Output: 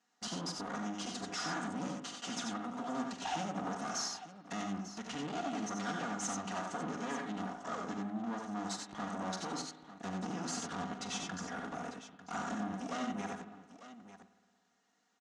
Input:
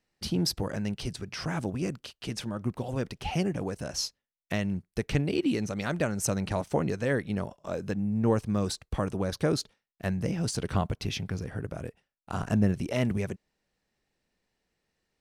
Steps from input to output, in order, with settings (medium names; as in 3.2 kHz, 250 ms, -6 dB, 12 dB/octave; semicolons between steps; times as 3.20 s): comb filter that takes the minimum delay 4.2 ms; compression, threshold -34 dBFS, peak gain reduction 13 dB; saturation -37 dBFS, distortion -11 dB; cabinet simulation 220–7500 Hz, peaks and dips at 480 Hz -9 dB, 760 Hz +7 dB, 1.3 kHz +7 dB, 2.4 kHz -6 dB, 4.6 kHz -3 dB, 6.7 kHz +7 dB; multi-tap echo 43/75/91/897 ms -12/-9.5/-5/-13.5 dB; spring tank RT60 1.5 s, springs 55 ms, chirp 50 ms, DRR 12 dB; trim +3 dB